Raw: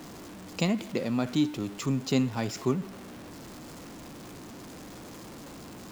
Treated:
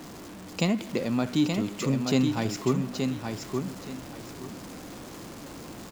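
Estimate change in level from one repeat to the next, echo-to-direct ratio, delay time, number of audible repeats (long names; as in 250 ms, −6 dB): −12.0 dB, −4.5 dB, 874 ms, 2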